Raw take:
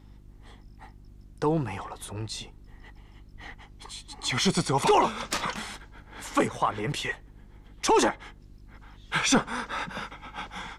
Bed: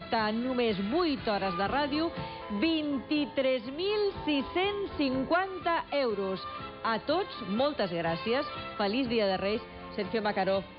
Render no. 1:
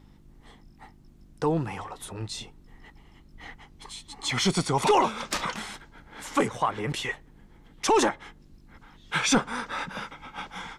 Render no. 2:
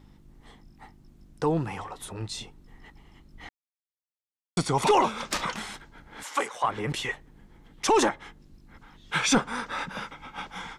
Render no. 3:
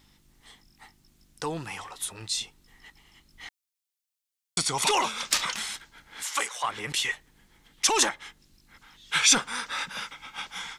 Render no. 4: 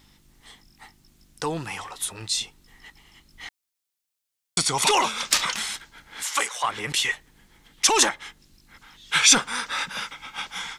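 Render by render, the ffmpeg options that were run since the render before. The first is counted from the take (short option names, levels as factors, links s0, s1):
-af "bandreject=f=50:t=h:w=4,bandreject=f=100:t=h:w=4"
-filter_complex "[0:a]asettb=1/sr,asplit=3[s0][s1][s2];[s0]atrim=end=6.234[s3];[s1]atrim=start=6.23:end=6.64,asetpts=PTS-STARTPTS,afade=t=in:d=0.004:c=qsin,afade=t=out:st=0.406:d=0.004:c=qsin,highpass=630[s4];[s2]atrim=start=6.636[s5];[s3][s4]acrossfade=d=0.004:c1=hsin:c2=qsin[s6];[s6][s5]acrossfade=d=0.004:c1=qsin:c2=hsin,asplit=3[s7][s8][s9];[s7]atrim=end=3.49,asetpts=PTS-STARTPTS,afade=t=out:st=3.486:d=0.004:c=hsin[s10];[s8]atrim=start=3.49:end=4.57,asetpts=PTS-STARTPTS,volume=0[s11];[s9]atrim=start=4.57,asetpts=PTS-STARTPTS,afade=t=in:d=0.004:c=hsin[s12];[s10][s11][s12]concat=n=3:v=0:a=1"
-af "tiltshelf=f=1500:g=-9.5"
-af "volume=1.58"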